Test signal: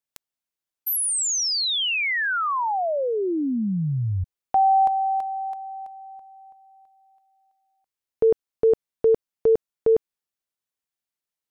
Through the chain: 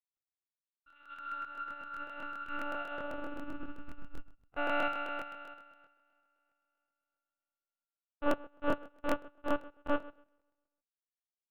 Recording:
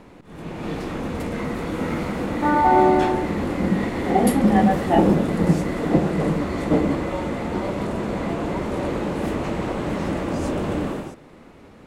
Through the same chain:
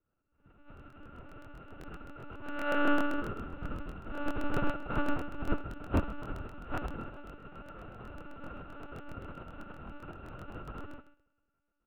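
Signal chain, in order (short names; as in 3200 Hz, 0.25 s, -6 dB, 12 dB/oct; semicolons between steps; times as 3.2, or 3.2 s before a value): sample sorter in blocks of 32 samples; dynamic EQ 2000 Hz, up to -4 dB, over -35 dBFS, Q 2.4; one-sided clip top -25.5 dBFS, bottom -8.5 dBFS; air absorption 470 m; doubler 40 ms -6 dB; feedback echo 0.135 s, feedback 52%, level -8 dB; monotone LPC vocoder at 8 kHz 290 Hz; crackling interface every 0.13 s, samples 1024, repeat, from 0.75; upward expander 2.5:1, over -37 dBFS; gain -6 dB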